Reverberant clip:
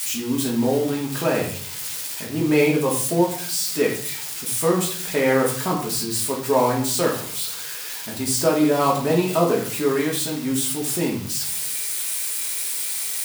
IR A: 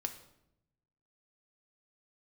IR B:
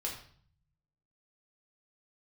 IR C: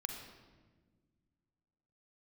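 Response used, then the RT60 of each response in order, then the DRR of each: B; 0.80, 0.50, 1.5 s; 5.5, -3.0, 3.5 dB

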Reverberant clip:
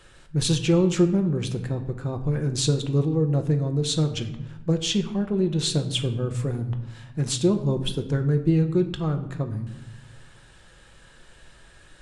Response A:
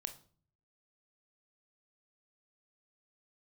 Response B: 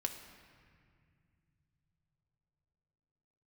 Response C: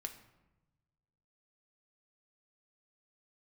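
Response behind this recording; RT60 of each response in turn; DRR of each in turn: C; 0.45, 2.2, 1.1 s; 7.5, 4.0, 5.5 dB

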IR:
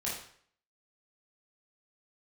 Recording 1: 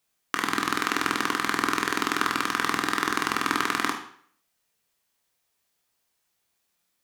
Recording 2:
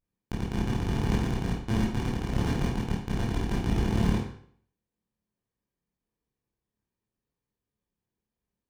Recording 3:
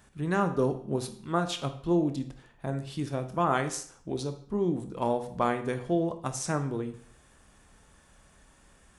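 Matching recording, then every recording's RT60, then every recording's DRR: 2; 0.55, 0.55, 0.55 s; 2.0, -6.5, 7.5 dB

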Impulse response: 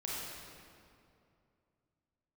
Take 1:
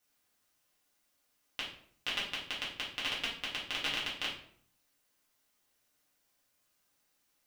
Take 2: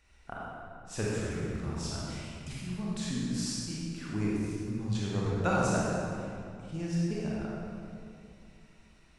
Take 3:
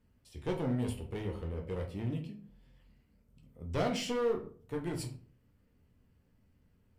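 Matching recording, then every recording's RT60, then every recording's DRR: 2; 0.60, 2.6, 0.45 s; -7.5, -6.0, 1.5 dB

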